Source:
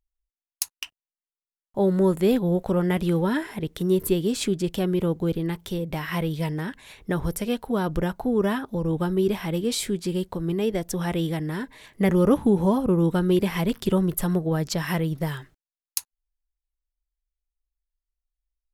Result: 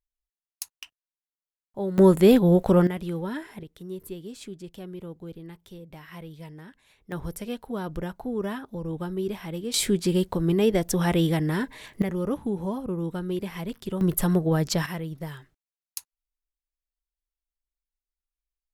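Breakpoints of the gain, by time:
-8 dB
from 1.98 s +4.5 dB
from 2.87 s -8 dB
from 3.63 s -15 dB
from 7.12 s -7 dB
from 9.74 s +3.5 dB
from 12.02 s -9 dB
from 14.01 s +1.5 dB
from 14.86 s -8 dB

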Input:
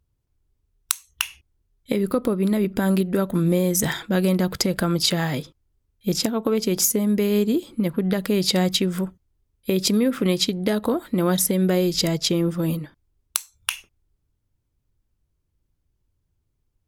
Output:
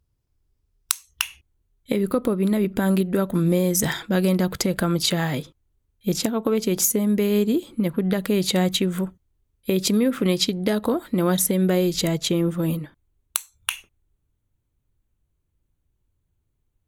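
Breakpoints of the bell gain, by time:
bell 5100 Hz 0.21 oct
+4 dB
from 1.23 s -7.5 dB
from 3.31 s +1.5 dB
from 4.46 s -7 dB
from 8.43 s -13.5 dB
from 8.99 s -6 dB
from 10.25 s 0 dB
from 11.32 s -7.5 dB
from 12 s -15 dB

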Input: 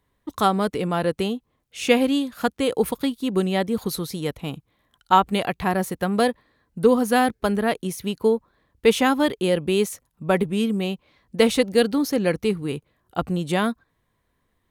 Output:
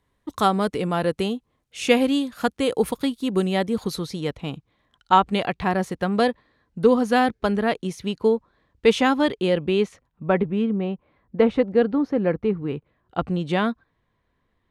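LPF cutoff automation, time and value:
3.54 s 11000 Hz
4.19 s 6100 Hz
9.3 s 6100 Hz
9.76 s 3500 Hz
10.85 s 1500 Hz
12.48 s 1500 Hz
13.28 s 4100 Hz

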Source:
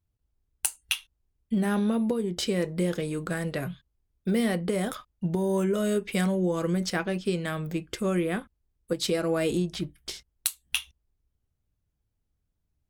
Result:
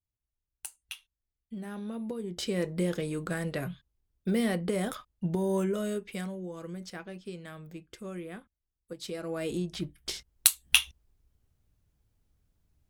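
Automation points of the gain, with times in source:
1.75 s -14 dB
2.64 s -2.5 dB
5.58 s -2.5 dB
6.44 s -13.5 dB
8.92 s -13.5 dB
9.85 s -2.5 dB
10.47 s +6.5 dB

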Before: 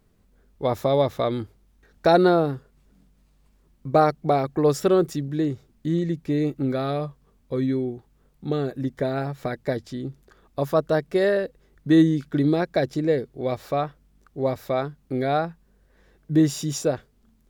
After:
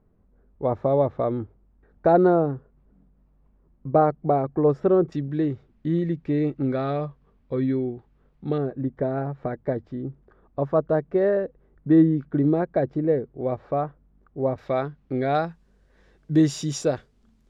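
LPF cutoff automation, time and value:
1100 Hz
from 5.12 s 2600 Hz
from 8.58 s 1200 Hz
from 14.58 s 2900 Hz
from 15.35 s 7300 Hz

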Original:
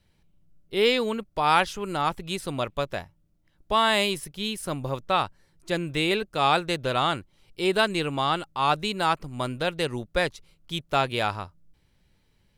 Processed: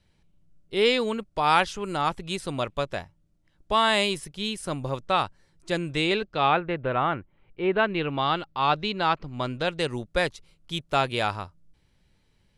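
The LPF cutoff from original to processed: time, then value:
LPF 24 dB/oct
5.89 s 10000 Hz
6.31 s 5300 Hz
6.61 s 2300 Hz
7.72 s 2300 Hz
8.32 s 4900 Hz
9.24 s 4900 Hz
10 s 11000 Hz

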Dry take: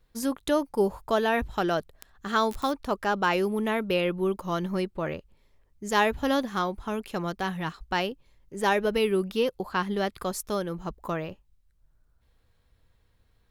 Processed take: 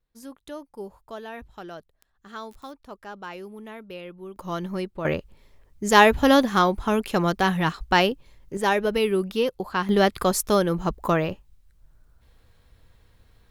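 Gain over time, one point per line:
-13 dB
from 4.36 s -1 dB
from 5.05 s +8.5 dB
from 8.57 s +2 dB
from 9.89 s +9 dB

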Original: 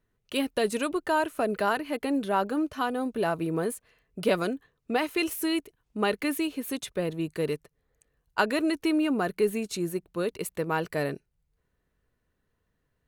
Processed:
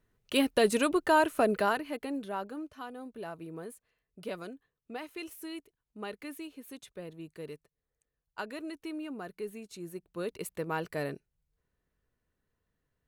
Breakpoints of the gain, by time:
1.44 s +1.5 dB
2.04 s -7.5 dB
2.78 s -14 dB
9.72 s -14 dB
10.32 s -5.5 dB

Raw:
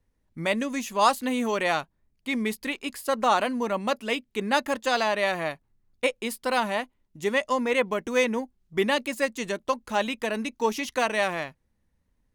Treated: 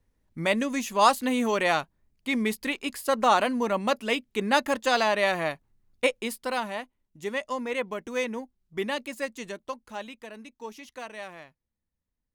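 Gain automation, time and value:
6.11 s +1 dB
6.69 s -6 dB
9.37 s -6 dB
10.32 s -14.5 dB

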